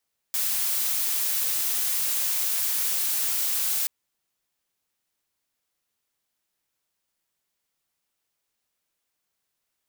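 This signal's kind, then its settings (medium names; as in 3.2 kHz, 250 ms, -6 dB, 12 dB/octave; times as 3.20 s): noise blue, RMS -25.5 dBFS 3.53 s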